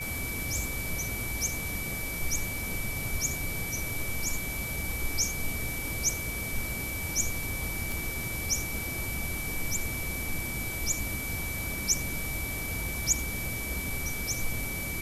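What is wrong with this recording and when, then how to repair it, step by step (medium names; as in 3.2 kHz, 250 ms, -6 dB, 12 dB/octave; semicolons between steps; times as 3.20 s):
crackle 45 per s -39 dBFS
whine 2.3 kHz -36 dBFS
7.92 s: pop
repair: de-click; band-stop 2.3 kHz, Q 30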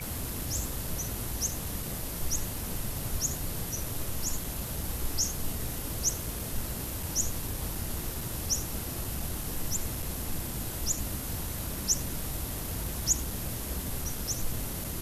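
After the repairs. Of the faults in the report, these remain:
nothing left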